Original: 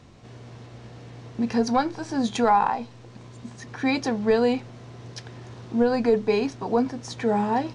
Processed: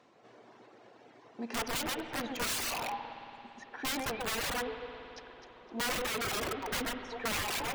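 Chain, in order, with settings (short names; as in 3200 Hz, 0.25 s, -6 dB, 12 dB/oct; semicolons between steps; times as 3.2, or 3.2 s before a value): HPF 430 Hz 12 dB/oct; high shelf 3200 Hz -10.5 dB; on a send: echo with dull and thin repeats by turns 0.128 s, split 2100 Hz, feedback 58%, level -3 dB; on the sum: wrapped overs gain 23 dB; reverb removal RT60 1.8 s; spring tank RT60 3.8 s, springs 56 ms, chirp 75 ms, DRR 8 dB; gain -4.5 dB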